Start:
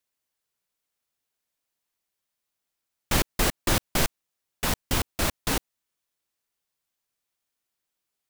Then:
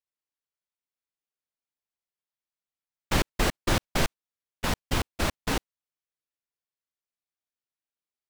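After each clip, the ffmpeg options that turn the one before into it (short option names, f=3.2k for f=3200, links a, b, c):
-af "agate=range=-12dB:threshold=-30dB:ratio=16:detection=peak,highshelf=f=7.6k:g=-11.5"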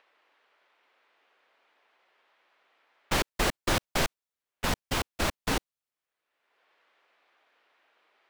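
-filter_complex "[0:a]acrossover=split=360|3000[a][b][c];[a]alimiter=limit=-22.5dB:level=0:latency=1:release=408[d];[b]acompressor=mode=upward:threshold=-42dB:ratio=2.5[e];[d][e][c]amix=inputs=3:normalize=0"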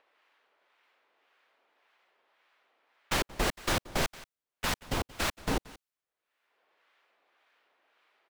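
-filter_complex "[0:a]aecho=1:1:179:0.1,acrossover=split=930[a][b];[a]aeval=exprs='val(0)*(1-0.5/2+0.5/2*cos(2*PI*1.8*n/s))':c=same[c];[b]aeval=exprs='val(0)*(1-0.5/2-0.5/2*cos(2*PI*1.8*n/s))':c=same[d];[c][d]amix=inputs=2:normalize=0"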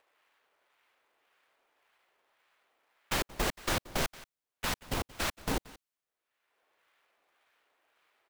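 -af "acrusher=bits=2:mode=log:mix=0:aa=0.000001,volume=-2.5dB"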